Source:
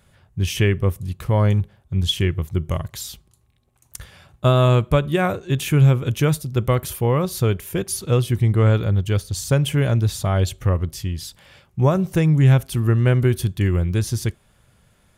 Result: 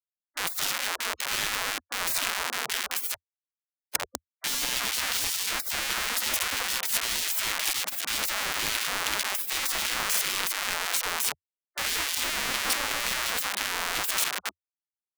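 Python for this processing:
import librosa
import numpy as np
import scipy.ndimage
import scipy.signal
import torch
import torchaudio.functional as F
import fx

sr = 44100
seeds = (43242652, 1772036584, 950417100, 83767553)

y = fx.echo_feedback(x, sr, ms=197, feedback_pct=37, wet_db=-16.5)
y = fx.schmitt(y, sr, flips_db=-32.0)
y = fx.spec_gate(y, sr, threshold_db=-25, keep='weak')
y = y * librosa.db_to_amplitude(4.0)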